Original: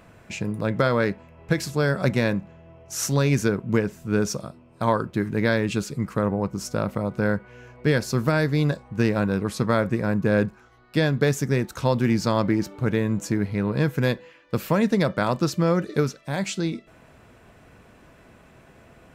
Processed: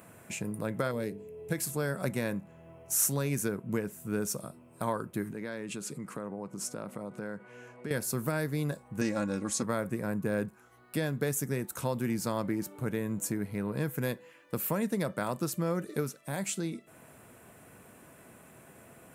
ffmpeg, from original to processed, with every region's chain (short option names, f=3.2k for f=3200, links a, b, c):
-filter_complex "[0:a]asettb=1/sr,asplit=3[a][b][c];[a]atrim=end=0.914[d];[b]atrim=start=0.91:end=1.52,asetpts=PTS-STARTPTS,afade=t=in:d=0.004:c=qsin,afade=t=out:st=0.606:d=0.004:c=qsin,equalizer=f=1.3k:w=1:g=-14,bandreject=f=50:t=h:w=6,bandreject=f=100:t=h:w=6,bandreject=f=150:t=h:w=6,bandreject=f=200:t=h:w=6,bandreject=f=250:t=h:w=6,bandreject=f=300:t=h:w=6,bandreject=f=350:t=h:w=6,bandreject=f=400:t=h:w=6,bandreject=f=450:t=h:w=6,aeval=exprs='val(0)+0.0112*sin(2*PI*430*n/s)':c=same[e];[c]atrim=start=1.516[f];[d][e]acrossfade=d=0.004:c1=hsin:c2=qsin[g];[g][f]acrossfade=d=0.004:c1=qsin:c2=hsin,asettb=1/sr,asplit=3[h][i][j];[h]atrim=end=5.324[k];[i]atrim=start=5.32:end=7.91,asetpts=PTS-STARTPTS,afade=t=in:d=0.004:c=qsin,afade=t=out:st=2.586:d=0.004:c=qsin,acompressor=threshold=-29dB:ratio=3:attack=3.2:release=140:knee=1:detection=peak,highpass=150,lowpass=7.8k[l];[j]atrim=start=7.906[m];[k][l]acrossfade=d=0.004:c1=hsin:c2=qsin[n];[n][m]acrossfade=d=0.004:c1=qsin:c2=hsin,asettb=1/sr,asplit=3[o][p][q];[o]atrim=end=9.014[r];[p]atrim=start=9.01:end=9.63,asetpts=PTS-STARTPTS,afade=t=in:d=0.004:c=qsin,afade=t=out:st=0.616:d=0.004:c=qsin,lowpass=f=6.5k:t=q:w=3.7,aecho=1:1:3.6:0.69,atrim=end_sample=27342[s];[q]atrim=start=9.626[t];[r][s]acrossfade=d=0.004:c1=hsin:c2=qsin[u];[u][t]acrossfade=d=0.004:c1=qsin:c2=hsin,highpass=110,acompressor=threshold=-38dB:ratio=1.5,highshelf=f=7.1k:t=q:w=1.5:g=13,volume=-2.5dB"